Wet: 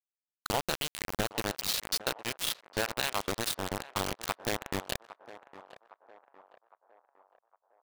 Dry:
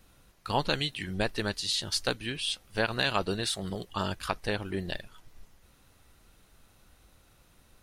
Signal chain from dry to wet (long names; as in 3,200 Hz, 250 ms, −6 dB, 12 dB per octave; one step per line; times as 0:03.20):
downward compressor 2.5 to 1, threshold −33 dBFS, peak gain reduction 8 dB
bit reduction 5 bits
on a send: feedback echo with a band-pass in the loop 809 ms, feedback 53%, band-pass 820 Hz, level −13.5 dB
on the sum: level +2.5 dB